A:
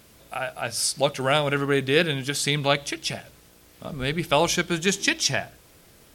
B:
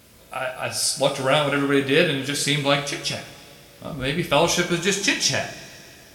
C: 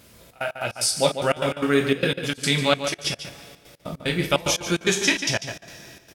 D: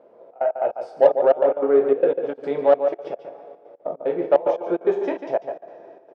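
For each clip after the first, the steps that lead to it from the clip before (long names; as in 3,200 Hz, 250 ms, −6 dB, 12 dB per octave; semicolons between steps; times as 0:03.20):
coupled-rooms reverb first 0.37 s, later 2.8 s, from −19 dB, DRR 1.5 dB
gate pattern "xxx.x.x." 148 BPM −24 dB; slap from a distant wall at 25 metres, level −9 dB
flat-topped band-pass 570 Hz, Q 1.4; in parallel at −6 dB: soft clipping −23 dBFS, distortion −9 dB; on the sum: level +6 dB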